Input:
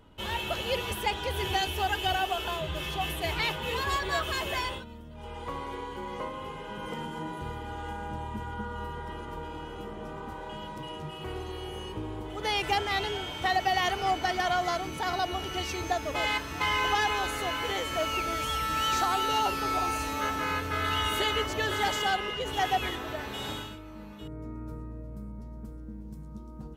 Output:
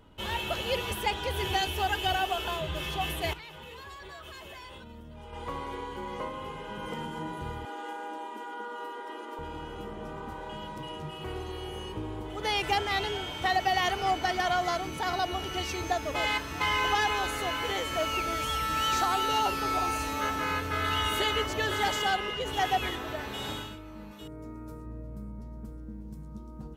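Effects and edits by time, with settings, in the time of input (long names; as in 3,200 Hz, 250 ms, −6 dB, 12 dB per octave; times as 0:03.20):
0:03.33–0:05.33: downward compressor 16 to 1, threshold −41 dBFS
0:07.65–0:09.39: Butterworth high-pass 250 Hz 72 dB per octave
0:24.11–0:24.86: bass and treble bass −5 dB, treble +6 dB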